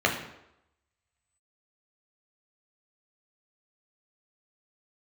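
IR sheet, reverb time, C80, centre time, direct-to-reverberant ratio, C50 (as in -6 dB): 0.85 s, 10.0 dB, 25 ms, 0.0 dB, 7.0 dB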